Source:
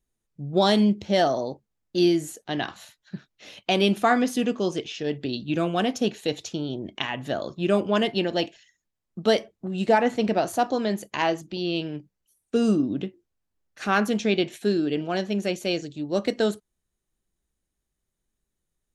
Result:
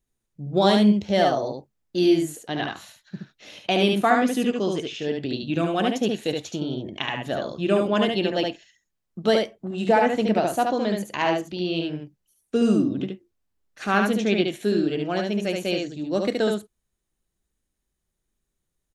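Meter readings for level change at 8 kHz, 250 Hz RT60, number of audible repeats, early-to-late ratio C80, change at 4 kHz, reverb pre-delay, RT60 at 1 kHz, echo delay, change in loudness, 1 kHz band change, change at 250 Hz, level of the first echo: -0.5 dB, no reverb, 1, no reverb, +0.5 dB, no reverb, no reverb, 72 ms, +1.5 dB, +2.0 dB, +2.0 dB, -3.5 dB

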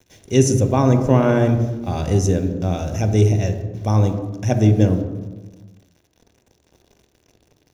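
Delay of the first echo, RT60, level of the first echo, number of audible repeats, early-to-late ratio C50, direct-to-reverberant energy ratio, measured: no echo, 1.3 s, no echo, no echo, 8.0 dB, 6.0 dB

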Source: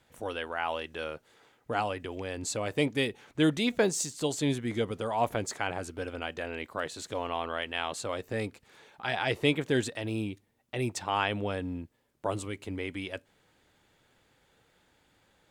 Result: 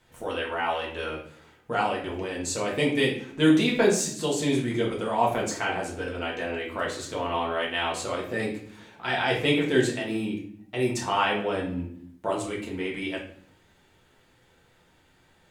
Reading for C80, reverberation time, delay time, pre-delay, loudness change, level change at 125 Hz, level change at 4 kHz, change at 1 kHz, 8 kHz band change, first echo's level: 10.5 dB, 0.60 s, no echo, 4 ms, +5.0 dB, +2.5 dB, +4.5 dB, +5.5 dB, +3.5 dB, no echo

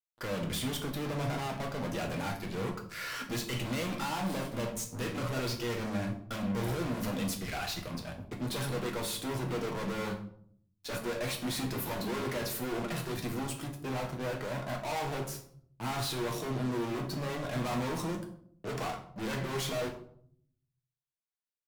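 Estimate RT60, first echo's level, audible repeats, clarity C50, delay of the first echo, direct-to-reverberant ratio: 0.60 s, no echo, no echo, 9.5 dB, no echo, 1.5 dB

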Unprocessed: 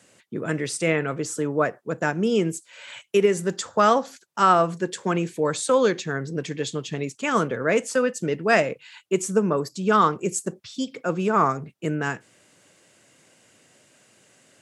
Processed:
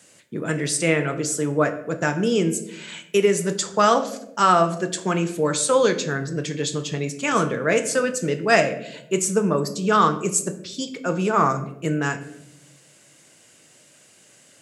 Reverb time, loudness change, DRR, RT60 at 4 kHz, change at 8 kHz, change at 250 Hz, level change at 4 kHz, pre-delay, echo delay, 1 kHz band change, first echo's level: 0.85 s, +2.0 dB, 7.5 dB, 0.50 s, +6.5 dB, +1.5 dB, +4.5 dB, 5 ms, no echo, +1.0 dB, no echo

